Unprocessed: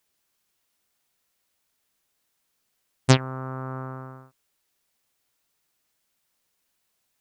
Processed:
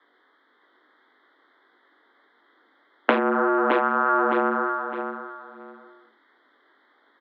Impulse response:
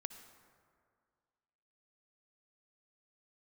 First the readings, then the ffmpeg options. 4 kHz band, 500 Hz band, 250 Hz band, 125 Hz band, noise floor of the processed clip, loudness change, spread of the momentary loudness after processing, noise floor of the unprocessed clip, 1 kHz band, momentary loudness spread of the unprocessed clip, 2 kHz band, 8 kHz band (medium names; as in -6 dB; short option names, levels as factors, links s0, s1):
-7.0 dB, +10.0 dB, +5.5 dB, under -20 dB, -64 dBFS, +3.0 dB, 14 LU, -75 dBFS, +13.5 dB, 18 LU, +10.5 dB, under -35 dB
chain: -filter_complex "[0:a]asuperstop=centerf=2500:order=8:qfactor=2.1,flanger=delay=19:depth=4.1:speed=1.7,acrossover=split=350|710[s0][s1][s2];[s1]adynamicsmooth=sensitivity=5.5:basefreq=510[s3];[s0][s3][s2]amix=inputs=3:normalize=0,acrusher=bits=7:mode=log:mix=0:aa=0.000001,asplit=2[s4][s5];[s5]aeval=exprs='0.596*sin(PI/2*8.91*val(0)/0.596)':c=same,volume=0.316[s6];[s4][s6]amix=inputs=2:normalize=0,highpass=f=170:t=q:w=0.5412,highpass=f=170:t=q:w=1.307,lowpass=f=3200:t=q:w=0.5176,lowpass=f=3200:t=q:w=0.7071,lowpass=f=3200:t=q:w=1.932,afreqshift=96,tiltshelf=f=1500:g=9,aecho=1:1:611|1222|1833:0.596|0.131|0.0288,acompressor=threshold=0.0562:ratio=6,equalizer=f=2400:w=0.3:g=11.5,volume=1.19"